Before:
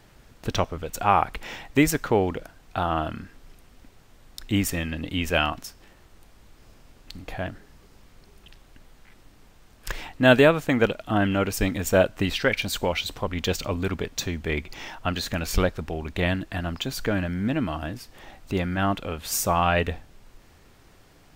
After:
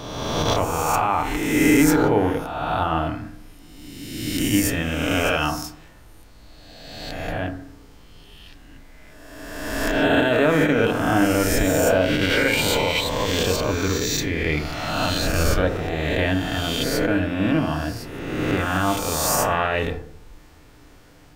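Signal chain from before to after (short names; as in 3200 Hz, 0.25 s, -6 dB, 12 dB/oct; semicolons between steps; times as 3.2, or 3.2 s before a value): spectral swells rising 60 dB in 1.68 s; limiter -10.5 dBFS, peak gain reduction 10 dB; FDN reverb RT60 0.63 s, low-frequency decay 1.25×, high-frequency decay 0.3×, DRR 5.5 dB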